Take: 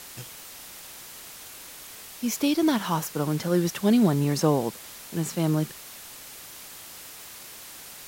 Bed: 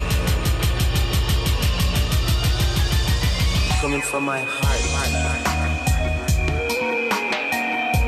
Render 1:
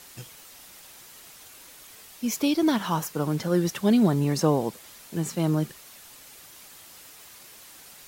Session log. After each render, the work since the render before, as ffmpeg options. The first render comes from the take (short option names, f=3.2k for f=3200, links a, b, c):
-af "afftdn=nr=6:nf=-44"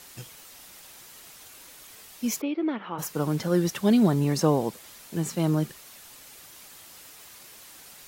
-filter_complex "[0:a]asplit=3[a][b][c];[a]afade=t=out:st=2.4:d=0.02[d];[b]highpass=370,equalizer=f=670:t=q:w=4:g=-7,equalizer=f=990:t=q:w=4:g=-10,equalizer=f=1.6k:t=q:w=4:g=-9,lowpass=f=2.3k:w=0.5412,lowpass=f=2.3k:w=1.3066,afade=t=in:st=2.4:d=0.02,afade=t=out:st=2.98:d=0.02[e];[c]afade=t=in:st=2.98:d=0.02[f];[d][e][f]amix=inputs=3:normalize=0"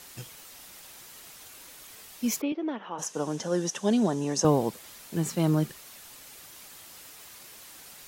-filter_complex "[0:a]asettb=1/sr,asplit=3[a][b][c];[a]atrim=end=2.524[d];[b]atrim=start=2.52:end=4.45,asetpts=PTS-STARTPTS,afade=t=in:d=0.004:c=qsin,afade=t=out:st=1.926:d=0.004:c=qsin,highpass=260,equalizer=f=340:t=q:w=4:g=-4,equalizer=f=1.3k:t=q:w=4:g=-6,equalizer=f=2.2k:t=q:w=4:g=-9,equalizer=f=4.3k:t=q:w=4:g=-7,equalizer=f=6.2k:t=q:w=4:g=8,lowpass=f=9.3k:w=0.5412,lowpass=f=9.3k:w=1.3066[e];[c]atrim=start=4.446[f];[d][e]acrossfade=d=0.004:c1=hsin:c2=qsin[g];[g][f]acrossfade=d=0.004:c1=qsin:c2=hsin"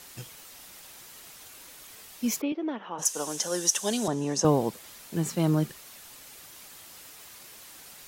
-filter_complex "[0:a]asettb=1/sr,asplit=3[a][b][c];[a]atrim=end=3.054[d];[b]atrim=start=3.05:end=4.08,asetpts=PTS-STARTPTS,afade=t=in:d=0.004:c=qsin,afade=t=out:st=1.026:d=0.004:c=qsin,aemphasis=mode=production:type=riaa[e];[c]atrim=start=4.076[f];[d][e]acrossfade=d=0.004:c1=hsin:c2=qsin[g];[g][f]acrossfade=d=0.004:c1=qsin:c2=hsin"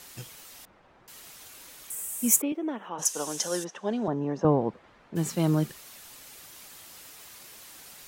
-filter_complex "[0:a]asettb=1/sr,asplit=3[a][b][c];[a]atrim=end=0.654[d];[b]atrim=start=0.65:end=1.08,asetpts=PTS-STARTPTS,afade=t=in:d=0.004:c=qsin,afade=t=out:st=0.426:d=0.004:c=qsin,lowpass=1.2k[e];[c]atrim=start=1.076[f];[d][e]acrossfade=d=0.004:c1=hsin:c2=qsin[g];[g][f]acrossfade=d=0.004:c1=qsin:c2=hsin,asettb=1/sr,asplit=3[h][i][j];[h]atrim=end=1.904[k];[i]atrim=start=1.9:end=2.89,asetpts=PTS-STARTPTS,afade=t=in:d=0.004:c=qsin,afade=t=out:st=0.986:d=0.004:c=qsin,highshelf=f=6.3k:t=q:w=3:g=11[l];[j]atrim=start=2.886[m];[k][l]acrossfade=d=0.004:c1=hsin:c2=qsin[n];[n][m]acrossfade=d=0.004:c1=qsin:c2=hsin,asplit=3[o][p][q];[o]afade=t=out:st=3.63:d=0.02[r];[p]lowpass=1.5k,afade=t=in:st=3.63:d=0.02,afade=t=out:st=5.15:d=0.02[s];[q]afade=t=in:st=5.15:d=0.02[t];[r][s][t]amix=inputs=3:normalize=0"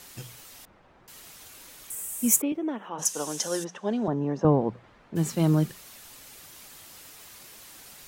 -af "lowshelf=f=210:g=5,bandreject=f=60:t=h:w=6,bandreject=f=120:t=h:w=6,bandreject=f=180:t=h:w=6"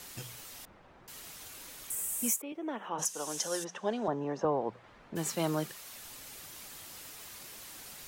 -filter_complex "[0:a]acrossover=split=440[a][b];[a]acompressor=threshold=-44dB:ratio=2.5[c];[c][b]amix=inputs=2:normalize=0,alimiter=limit=-19dB:level=0:latency=1:release=424"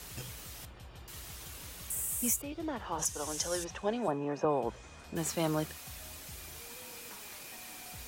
-filter_complex "[1:a]volume=-31.5dB[a];[0:a][a]amix=inputs=2:normalize=0"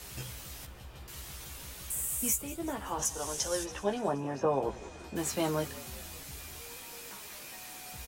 -filter_complex "[0:a]asplit=2[a][b];[b]adelay=15,volume=-5dB[c];[a][c]amix=inputs=2:normalize=0,asplit=7[d][e][f][g][h][i][j];[e]adelay=189,afreqshift=-43,volume=-18dB[k];[f]adelay=378,afreqshift=-86,volume=-21.7dB[l];[g]adelay=567,afreqshift=-129,volume=-25.5dB[m];[h]adelay=756,afreqshift=-172,volume=-29.2dB[n];[i]adelay=945,afreqshift=-215,volume=-33dB[o];[j]adelay=1134,afreqshift=-258,volume=-36.7dB[p];[d][k][l][m][n][o][p]amix=inputs=7:normalize=0"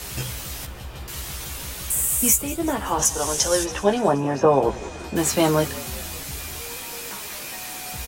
-af "volume=12dB"